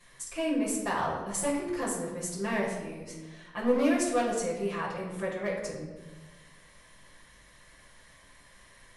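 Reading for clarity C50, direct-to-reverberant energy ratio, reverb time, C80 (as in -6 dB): 3.0 dB, -9.0 dB, 1.3 s, 5.5 dB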